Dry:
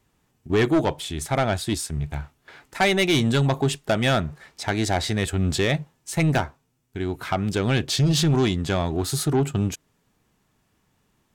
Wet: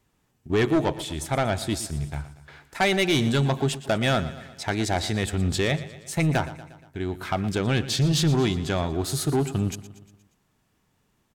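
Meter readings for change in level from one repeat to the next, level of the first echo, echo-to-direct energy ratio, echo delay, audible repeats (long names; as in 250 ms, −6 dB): −5.0 dB, −15.5 dB, −14.0 dB, 118 ms, 4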